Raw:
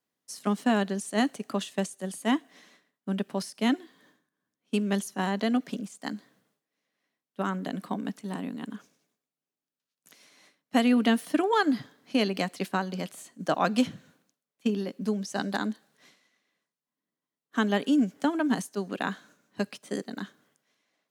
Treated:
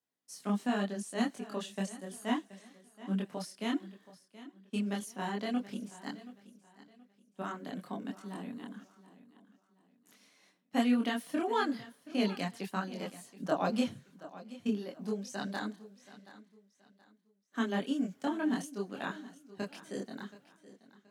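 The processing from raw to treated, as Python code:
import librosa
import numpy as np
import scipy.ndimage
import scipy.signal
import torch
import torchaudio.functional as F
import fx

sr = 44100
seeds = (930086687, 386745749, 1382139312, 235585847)

y = fx.chorus_voices(x, sr, voices=6, hz=0.62, base_ms=25, depth_ms=4.7, mix_pct=50)
y = fx.wow_flutter(y, sr, seeds[0], rate_hz=2.1, depth_cents=19.0)
y = fx.echo_feedback(y, sr, ms=726, feedback_pct=31, wet_db=-17.0)
y = y * librosa.db_to_amplitude(-4.0)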